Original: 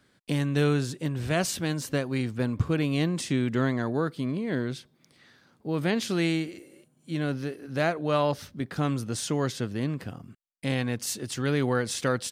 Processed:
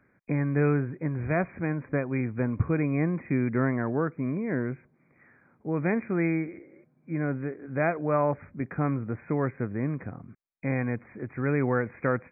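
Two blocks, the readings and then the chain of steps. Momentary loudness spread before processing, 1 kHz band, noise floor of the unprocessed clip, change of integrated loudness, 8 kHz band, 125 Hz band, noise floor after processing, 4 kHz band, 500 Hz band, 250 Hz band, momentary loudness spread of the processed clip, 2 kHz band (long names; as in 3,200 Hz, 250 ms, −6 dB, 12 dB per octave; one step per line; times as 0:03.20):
9 LU, 0.0 dB, −65 dBFS, −0.5 dB, below −40 dB, 0.0 dB, −66 dBFS, below −40 dB, 0.0 dB, 0.0 dB, 9 LU, −0.5 dB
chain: linear-phase brick-wall low-pass 2,500 Hz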